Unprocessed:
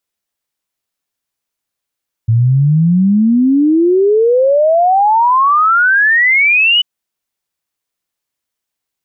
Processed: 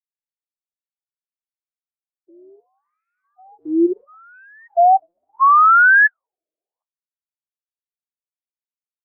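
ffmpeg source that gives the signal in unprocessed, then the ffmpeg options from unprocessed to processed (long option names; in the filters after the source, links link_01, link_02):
-f lavfi -i "aevalsrc='0.447*clip(min(t,4.54-t)/0.01,0,1)*sin(2*PI*110*4.54/log(3000/110)*(exp(log(3000/110)*t/4.54)-1))':duration=4.54:sample_rate=44100"
-af "agate=range=-33dB:threshold=-6dB:ratio=3:detection=peak,acontrast=21,afftfilt=real='re*between(b*sr/1024,450*pow(1900/450,0.5+0.5*sin(2*PI*0.73*pts/sr))/1.41,450*pow(1900/450,0.5+0.5*sin(2*PI*0.73*pts/sr))*1.41)':imag='im*between(b*sr/1024,450*pow(1900/450,0.5+0.5*sin(2*PI*0.73*pts/sr))/1.41,450*pow(1900/450,0.5+0.5*sin(2*PI*0.73*pts/sr))*1.41)':win_size=1024:overlap=0.75"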